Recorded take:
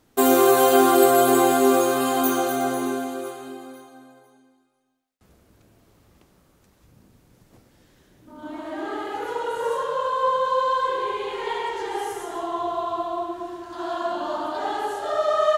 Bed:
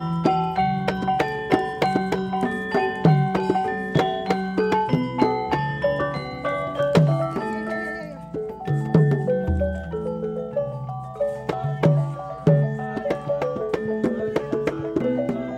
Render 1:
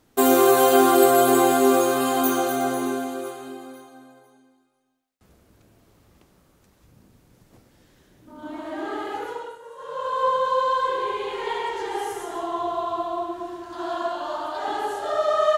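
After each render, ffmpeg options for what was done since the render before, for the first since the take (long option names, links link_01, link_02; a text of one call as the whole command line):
ffmpeg -i in.wav -filter_complex "[0:a]asettb=1/sr,asplit=3[link_01][link_02][link_03];[link_01]atrim=end=14.084[link_04];[link_02]atrim=start=14.08:end=14.68,asetpts=PTS-STARTPTS,afade=type=in:duration=0.004:curve=qsin,afade=type=out:start_time=0.596:duration=0.004:curve=qsin,equalizer=frequency=210:width_type=o:width=1.5:gain=-11[link_05];[link_03]atrim=start=14.676[link_06];[link_04][link_05]acrossfade=duration=0.004:curve1=hsin:curve2=qsin[link_07];[link_07][link_06]acrossfade=duration=0.004:curve1=qsin:curve2=hsin,asplit=3[link_08][link_09][link_10];[link_08]atrim=end=9.59,asetpts=PTS-STARTPTS,afade=type=out:start_time=9.14:duration=0.45:silence=0.133352[link_11];[link_09]atrim=start=9.59:end=9.76,asetpts=PTS-STARTPTS,volume=-17.5dB[link_12];[link_10]atrim=start=9.76,asetpts=PTS-STARTPTS,afade=type=in:duration=0.45:silence=0.133352[link_13];[link_11][link_12][link_13]concat=n=3:v=0:a=1" out.wav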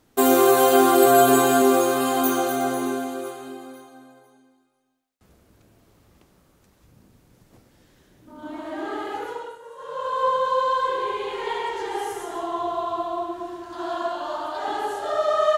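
ffmpeg -i in.wav -filter_complex "[0:a]asettb=1/sr,asplit=3[link_01][link_02][link_03];[link_01]atrim=end=1.064[link_04];[link_02]atrim=start=1.06:end=1.62,asetpts=PTS-STARTPTS,afade=type=in:duration=0.004:curve=qsin,afade=type=out:start_time=0.556:duration=0.004:curve=qsin,aecho=1:1:7:0.65,atrim=end_sample=24696[link_05];[link_03]atrim=start=1.616[link_06];[link_04][link_05]acrossfade=duration=0.004:curve1=hsin:curve2=qsin[link_07];[link_07][link_06]acrossfade=duration=0.004:curve1=qsin:curve2=hsin" out.wav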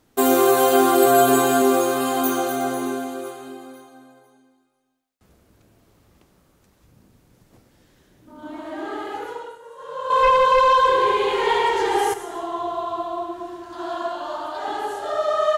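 ffmpeg -i in.wav -filter_complex "[0:a]asettb=1/sr,asplit=3[link_01][link_02][link_03];[link_01]atrim=end=10.104[link_04];[link_02]atrim=start=10.1:end=12.14,asetpts=PTS-STARTPTS,afade=type=in:duration=0.004:curve=qsin,afade=type=out:start_time=2.036:duration=0.004:curve=qsin,aeval=exprs='0.282*sin(PI/2*1.78*val(0)/0.282)':channel_layout=same[link_05];[link_03]atrim=start=12.136[link_06];[link_04][link_05]acrossfade=duration=0.004:curve1=hsin:curve2=qsin[link_07];[link_07][link_06]acrossfade=duration=0.004:curve1=qsin:curve2=hsin" out.wav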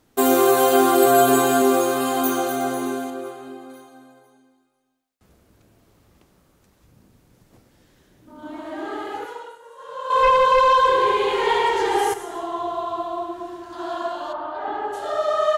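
ffmpeg -i in.wav -filter_complex "[0:a]asettb=1/sr,asplit=3[link_01][link_02][link_03];[link_01]atrim=end=3.104[link_04];[link_02]atrim=start=3.1:end=3.7,asetpts=PTS-STARTPTS,afade=type=in:duration=0.004:curve=qsin,afade=type=out:start_time=0.596:duration=0.004:curve=qsin,highshelf=frequency=3500:gain=-7.5[link_05];[link_03]atrim=start=3.696[link_06];[link_04][link_05]acrossfade=duration=0.004:curve1=hsin:curve2=qsin[link_07];[link_07][link_06]acrossfade=duration=0.004:curve1=qsin:curve2=hsin,asettb=1/sr,asplit=3[link_08][link_09][link_10];[link_08]atrim=end=9.254[link_11];[link_09]atrim=start=9.25:end=10.15,asetpts=PTS-STARTPTS,afade=type=in:duration=0.004:curve=qsin,afade=type=out:start_time=0.896:duration=0.004:curve=qsin,lowshelf=frequency=340:gain=-10.5[link_12];[link_10]atrim=start=10.146[link_13];[link_11][link_12]acrossfade=duration=0.004:curve1=hsin:curve2=qsin[link_14];[link_14][link_13]acrossfade=duration=0.004:curve1=qsin:curve2=hsin,asplit=3[link_15][link_16][link_17];[link_15]afade=type=out:start_time=14.32:duration=0.02[link_18];[link_16]lowpass=2100,afade=type=in:start_time=14.32:duration=0.02,afade=type=out:start_time=14.92:duration=0.02[link_19];[link_17]afade=type=in:start_time=14.92:duration=0.02[link_20];[link_18][link_19][link_20]amix=inputs=3:normalize=0" out.wav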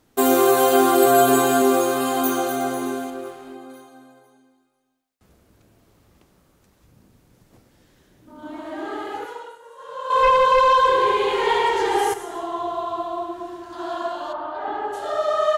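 ffmpeg -i in.wav -filter_complex "[0:a]asettb=1/sr,asplit=3[link_01][link_02][link_03];[link_01]atrim=end=2.634[link_04];[link_02]atrim=start=2.63:end=3.55,asetpts=PTS-STARTPTS,afade=type=in:duration=0.004:curve=qsin,afade=type=out:start_time=0.916:duration=0.004:curve=qsin,aeval=exprs='sgn(val(0))*max(abs(val(0))-0.00376,0)':channel_layout=same[link_05];[link_03]atrim=start=3.546[link_06];[link_04][link_05]acrossfade=duration=0.004:curve1=hsin:curve2=qsin[link_07];[link_07][link_06]acrossfade=duration=0.004:curve1=qsin:curve2=hsin" out.wav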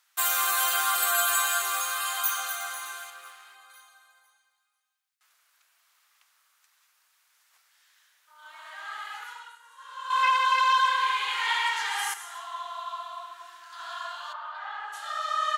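ffmpeg -i in.wav -af "highpass=frequency=1200:width=0.5412,highpass=frequency=1200:width=1.3066" out.wav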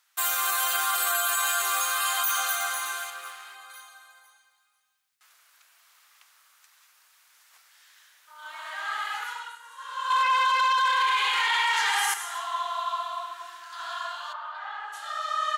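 ffmpeg -i in.wav -af "dynaudnorm=framelen=200:gausssize=21:maxgain=7dB,alimiter=limit=-16dB:level=0:latency=1:release=17" out.wav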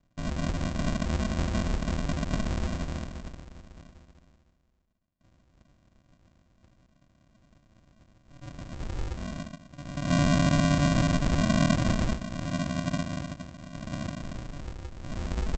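ffmpeg -i in.wav -af "afreqshift=91,aresample=16000,acrusher=samples=37:mix=1:aa=0.000001,aresample=44100" out.wav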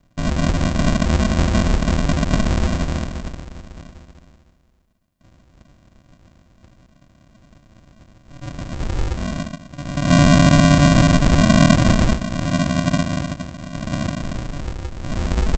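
ffmpeg -i in.wav -af "volume=11.5dB" out.wav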